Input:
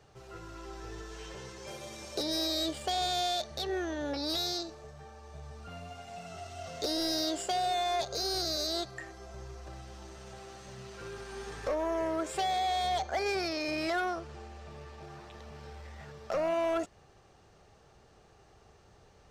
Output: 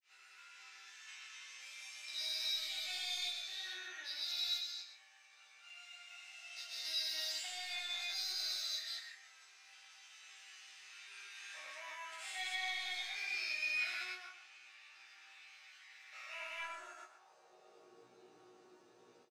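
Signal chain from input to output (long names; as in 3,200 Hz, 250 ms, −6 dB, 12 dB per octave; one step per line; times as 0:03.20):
spectrum averaged block by block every 200 ms
high-pass filter sweep 2,200 Hz → 300 Hz, 0:16.48–0:18.01
in parallel at −9 dB: hard clipping −35.5 dBFS, distortion −9 dB
on the sum: resonators tuned to a chord B2 major, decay 0.27 s
granular cloud 197 ms, grains 20 per second, spray 147 ms, pitch spread up and down by 0 semitones
double-tracking delay 17 ms −3.5 dB
on a send: single-tap delay 123 ms −10.5 dB
on the sum: level +10.5 dB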